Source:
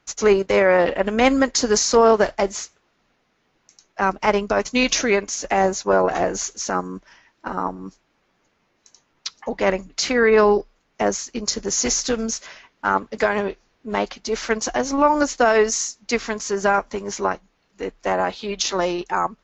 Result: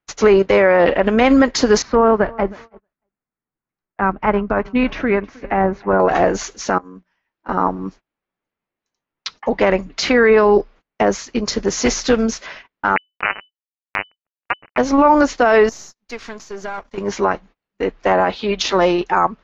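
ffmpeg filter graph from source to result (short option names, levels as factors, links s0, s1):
-filter_complex "[0:a]asettb=1/sr,asplit=3[s0][s1][s2];[s0]atrim=end=1.824[s3];[s1]atrim=start=1.82:end=6,asetpts=PTS-STARTPTS,afade=t=in:d=0.004:c=qsin,afade=t=out:st=4.176:d=0.004:c=qsin,lowpass=1400,equalizer=f=560:t=o:w=1.9:g=-8,aecho=1:1:315|630:0.0708|0.0248,atrim=end_sample=184338[s4];[s2]atrim=start=5.996[s5];[s3][s4]acrossfade=d=0.004:c1=hsin:c2=qsin[s6];[s6][s5]acrossfade=d=0.004:c1=qsin:c2=hsin,asettb=1/sr,asplit=3[s7][s8][s9];[s7]atrim=end=6.784[s10];[s8]atrim=start=6.78:end=7.49,asetpts=PTS-STARTPTS,afade=t=in:d=0.004:c=qsin,afade=t=out:st=0.706:d=0.004:c=qsin,bandreject=f=60:t=h:w=6,bandreject=f=120:t=h:w=6,bandreject=f=180:t=h:w=6,bandreject=f=240:t=h:w=6,bandreject=f=300:t=h:w=6,bandreject=f=360:t=h:w=6,acompressor=threshold=0.00631:ratio=5:attack=3.2:release=140:knee=1:detection=peak,asplit=2[s11][s12];[s12]adelay=15,volume=0.316[s13];[s11][s13]amix=inputs=2:normalize=0,atrim=end_sample=31311[s14];[s9]atrim=start=7.486[s15];[s10][s14]acrossfade=d=0.004:c1=hsin:c2=qsin[s16];[s16][s15]acrossfade=d=0.004:c1=qsin:c2=hsin,asettb=1/sr,asplit=3[s17][s18][s19];[s17]atrim=end=12.964[s20];[s18]atrim=start=12.96:end=14.78,asetpts=PTS-STARTPTS,afade=t=in:d=0.004:c=qsin,afade=t=out:st=1.816:d=0.004:c=qsin,highpass=930,acrusher=bits=2:mix=0:aa=0.5,lowpass=f=2600:t=q:w=0.5098,lowpass=f=2600:t=q:w=0.6013,lowpass=f=2600:t=q:w=0.9,lowpass=f=2600:t=q:w=2.563,afreqshift=-3000[s21];[s19]atrim=start=14.776[s22];[s20][s21]acrossfade=d=0.004:c1=hsin:c2=qsin[s23];[s23][s22]acrossfade=d=0.004:c1=qsin:c2=hsin,asettb=1/sr,asplit=3[s24][s25][s26];[s24]atrim=end=15.694[s27];[s25]atrim=start=15.69:end=16.98,asetpts=PTS-STARTPTS,afade=t=in:d=0.004:c=qsin,afade=t=out:st=1.286:d=0.004:c=qsin,aeval=exprs='if(lt(val(0),0),0.447*val(0),val(0))':c=same,highshelf=f=4200:g=10,acompressor=threshold=0.00631:ratio=2:attack=3.2:release=140:knee=1:detection=peak[s28];[s26]atrim=start=16.976[s29];[s27][s28]acrossfade=d=0.004:c1=hsin:c2=qsin[s30];[s30][s29]acrossfade=d=0.004:c1=qsin:c2=hsin,lowpass=3500,agate=range=0.0447:threshold=0.00562:ratio=16:detection=peak,alimiter=limit=0.266:level=0:latency=1:release=31,volume=2.51"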